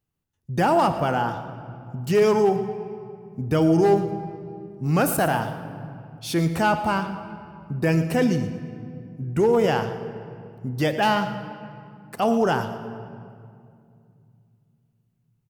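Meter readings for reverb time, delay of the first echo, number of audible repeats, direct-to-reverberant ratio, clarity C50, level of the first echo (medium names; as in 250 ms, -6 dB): 2.3 s, 115 ms, 2, 8.0 dB, 9.0 dB, -15.0 dB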